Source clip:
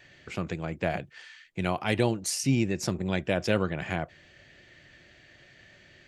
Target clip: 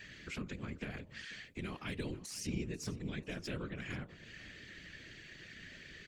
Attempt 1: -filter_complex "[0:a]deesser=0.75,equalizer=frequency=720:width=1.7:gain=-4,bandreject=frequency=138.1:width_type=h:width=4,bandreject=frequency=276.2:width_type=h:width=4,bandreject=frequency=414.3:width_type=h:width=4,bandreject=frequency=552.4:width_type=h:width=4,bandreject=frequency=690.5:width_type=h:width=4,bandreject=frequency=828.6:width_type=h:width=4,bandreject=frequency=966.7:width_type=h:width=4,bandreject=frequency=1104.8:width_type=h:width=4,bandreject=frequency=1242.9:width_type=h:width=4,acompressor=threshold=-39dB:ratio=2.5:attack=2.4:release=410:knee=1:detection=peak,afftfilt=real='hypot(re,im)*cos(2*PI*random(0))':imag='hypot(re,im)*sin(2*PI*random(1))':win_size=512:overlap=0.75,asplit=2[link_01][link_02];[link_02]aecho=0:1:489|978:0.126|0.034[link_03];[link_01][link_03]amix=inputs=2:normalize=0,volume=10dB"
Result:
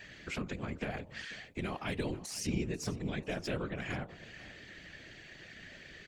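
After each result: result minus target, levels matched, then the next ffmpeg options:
1,000 Hz band +3.5 dB; downward compressor: peak gain reduction −3 dB
-filter_complex "[0:a]deesser=0.75,equalizer=frequency=720:width=1.7:gain=-15,bandreject=frequency=138.1:width_type=h:width=4,bandreject=frequency=276.2:width_type=h:width=4,bandreject=frequency=414.3:width_type=h:width=4,bandreject=frequency=552.4:width_type=h:width=4,bandreject=frequency=690.5:width_type=h:width=4,bandreject=frequency=828.6:width_type=h:width=4,bandreject=frequency=966.7:width_type=h:width=4,bandreject=frequency=1104.8:width_type=h:width=4,bandreject=frequency=1242.9:width_type=h:width=4,acompressor=threshold=-39dB:ratio=2.5:attack=2.4:release=410:knee=1:detection=peak,afftfilt=real='hypot(re,im)*cos(2*PI*random(0))':imag='hypot(re,im)*sin(2*PI*random(1))':win_size=512:overlap=0.75,asplit=2[link_01][link_02];[link_02]aecho=0:1:489|978:0.126|0.034[link_03];[link_01][link_03]amix=inputs=2:normalize=0,volume=10dB"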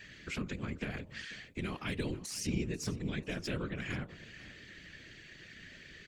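downward compressor: peak gain reduction −4 dB
-filter_complex "[0:a]deesser=0.75,equalizer=frequency=720:width=1.7:gain=-15,bandreject=frequency=138.1:width_type=h:width=4,bandreject=frequency=276.2:width_type=h:width=4,bandreject=frequency=414.3:width_type=h:width=4,bandreject=frequency=552.4:width_type=h:width=4,bandreject=frequency=690.5:width_type=h:width=4,bandreject=frequency=828.6:width_type=h:width=4,bandreject=frequency=966.7:width_type=h:width=4,bandreject=frequency=1104.8:width_type=h:width=4,bandreject=frequency=1242.9:width_type=h:width=4,acompressor=threshold=-46dB:ratio=2.5:attack=2.4:release=410:knee=1:detection=peak,afftfilt=real='hypot(re,im)*cos(2*PI*random(0))':imag='hypot(re,im)*sin(2*PI*random(1))':win_size=512:overlap=0.75,asplit=2[link_01][link_02];[link_02]aecho=0:1:489|978:0.126|0.034[link_03];[link_01][link_03]amix=inputs=2:normalize=0,volume=10dB"

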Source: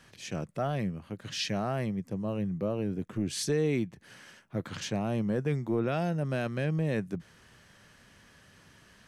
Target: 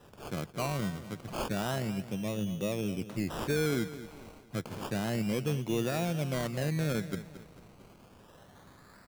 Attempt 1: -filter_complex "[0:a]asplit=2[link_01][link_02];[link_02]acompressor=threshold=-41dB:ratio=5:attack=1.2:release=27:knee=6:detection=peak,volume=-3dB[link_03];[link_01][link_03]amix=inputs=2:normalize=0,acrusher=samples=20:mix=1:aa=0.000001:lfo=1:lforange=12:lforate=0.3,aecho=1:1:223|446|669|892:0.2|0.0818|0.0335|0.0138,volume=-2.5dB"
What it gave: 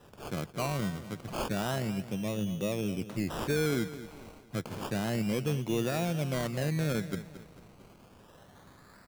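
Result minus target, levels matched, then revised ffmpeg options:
downward compressor: peak gain reduction −6.5 dB
-filter_complex "[0:a]asplit=2[link_01][link_02];[link_02]acompressor=threshold=-49dB:ratio=5:attack=1.2:release=27:knee=6:detection=peak,volume=-3dB[link_03];[link_01][link_03]amix=inputs=2:normalize=0,acrusher=samples=20:mix=1:aa=0.000001:lfo=1:lforange=12:lforate=0.3,aecho=1:1:223|446|669|892:0.2|0.0818|0.0335|0.0138,volume=-2.5dB"

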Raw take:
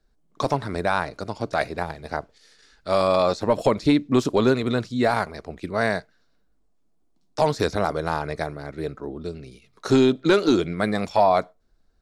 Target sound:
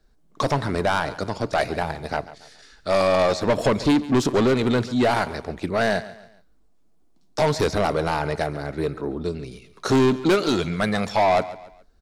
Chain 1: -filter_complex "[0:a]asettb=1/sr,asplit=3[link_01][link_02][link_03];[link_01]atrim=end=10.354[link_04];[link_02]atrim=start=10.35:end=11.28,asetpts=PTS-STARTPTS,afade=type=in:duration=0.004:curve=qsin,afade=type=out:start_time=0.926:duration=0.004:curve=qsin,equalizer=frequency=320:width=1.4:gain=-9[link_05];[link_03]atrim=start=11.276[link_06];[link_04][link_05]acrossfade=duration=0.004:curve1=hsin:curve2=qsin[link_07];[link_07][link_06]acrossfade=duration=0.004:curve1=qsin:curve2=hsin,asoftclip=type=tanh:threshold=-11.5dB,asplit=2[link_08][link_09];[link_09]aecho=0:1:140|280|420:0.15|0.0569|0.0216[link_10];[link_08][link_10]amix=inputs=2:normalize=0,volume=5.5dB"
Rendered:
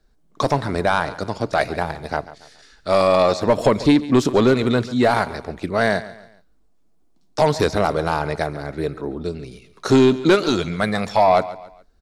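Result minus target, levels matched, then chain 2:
soft clipping: distortion −9 dB
-filter_complex "[0:a]asettb=1/sr,asplit=3[link_01][link_02][link_03];[link_01]atrim=end=10.354[link_04];[link_02]atrim=start=10.35:end=11.28,asetpts=PTS-STARTPTS,afade=type=in:duration=0.004:curve=qsin,afade=type=out:start_time=0.926:duration=0.004:curve=qsin,equalizer=frequency=320:width=1.4:gain=-9[link_05];[link_03]atrim=start=11.276[link_06];[link_04][link_05]acrossfade=duration=0.004:curve1=hsin:curve2=qsin[link_07];[link_07][link_06]acrossfade=duration=0.004:curve1=qsin:curve2=hsin,asoftclip=type=tanh:threshold=-19.5dB,asplit=2[link_08][link_09];[link_09]aecho=0:1:140|280|420:0.15|0.0569|0.0216[link_10];[link_08][link_10]amix=inputs=2:normalize=0,volume=5.5dB"

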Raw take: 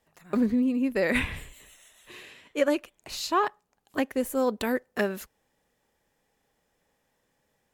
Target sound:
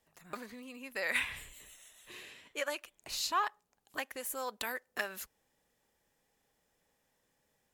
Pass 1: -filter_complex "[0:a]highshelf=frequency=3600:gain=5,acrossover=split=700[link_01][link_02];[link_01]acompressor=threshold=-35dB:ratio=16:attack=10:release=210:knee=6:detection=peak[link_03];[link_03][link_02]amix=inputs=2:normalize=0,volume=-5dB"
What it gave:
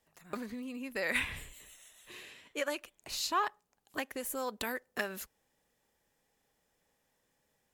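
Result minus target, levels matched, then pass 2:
downward compressor: peak gain reduction −9.5 dB
-filter_complex "[0:a]highshelf=frequency=3600:gain=5,acrossover=split=700[link_01][link_02];[link_01]acompressor=threshold=-45dB:ratio=16:attack=10:release=210:knee=6:detection=peak[link_03];[link_03][link_02]amix=inputs=2:normalize=0,volume=-5dB"

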